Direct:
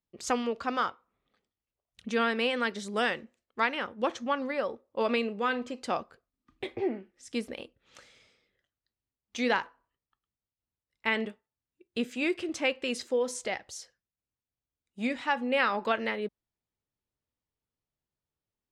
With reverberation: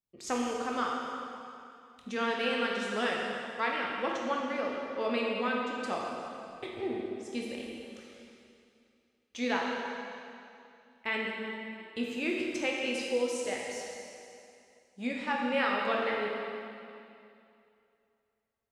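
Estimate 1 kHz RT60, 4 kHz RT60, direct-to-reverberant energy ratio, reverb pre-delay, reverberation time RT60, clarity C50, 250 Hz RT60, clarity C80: 2.6 s, 2.4 s, -2.0 dB, 7 ms, 2.6 s, 0.0 dB, 2.6 s, 1.0 dB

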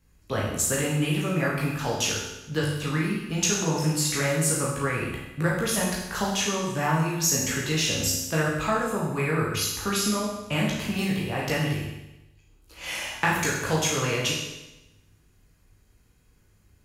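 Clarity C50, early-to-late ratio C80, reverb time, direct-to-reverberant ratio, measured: 1.5 dB, 4.5 dB, 1.0 s, -5.0 dB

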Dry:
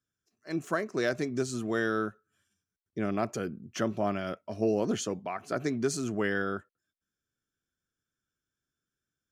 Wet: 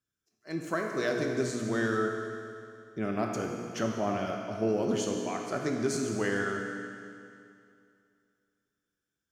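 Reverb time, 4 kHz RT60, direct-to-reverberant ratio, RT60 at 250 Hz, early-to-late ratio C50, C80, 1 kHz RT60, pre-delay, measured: 2.5 s, 2.4 s, 1.0 dB, 2.5 s, 2.0 dB, 3.5 dB, 2.5 s, 17 ms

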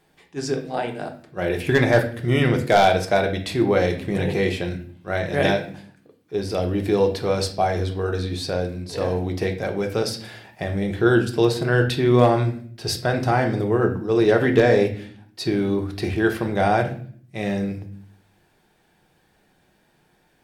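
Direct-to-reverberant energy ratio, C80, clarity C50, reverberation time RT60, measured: 3.5 dB, 15.0 dB, 10.5 dB, 0.55 s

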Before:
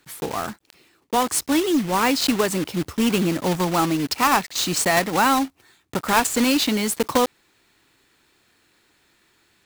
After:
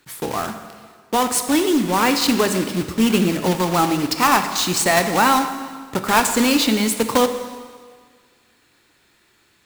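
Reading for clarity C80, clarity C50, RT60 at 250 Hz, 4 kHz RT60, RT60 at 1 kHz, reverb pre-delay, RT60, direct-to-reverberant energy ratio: 10.0 dB, 8.5 dB, 1.7 s, 1.6 s, 1.7 s, 4 ms, 1.7 s, 7.0 dB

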